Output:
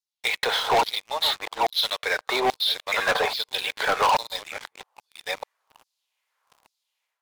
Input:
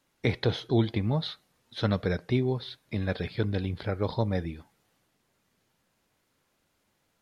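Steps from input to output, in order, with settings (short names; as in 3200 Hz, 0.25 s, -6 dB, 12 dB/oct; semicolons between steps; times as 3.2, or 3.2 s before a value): reverse delay 0.604 s, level -8 dB; band shelf 670 Hz +15 dB; AGC gain up to 12 dB; LFO high-pass saw down 1.2 Hz 860–5100 Hz; sample leveller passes 5; gain -8.5 dB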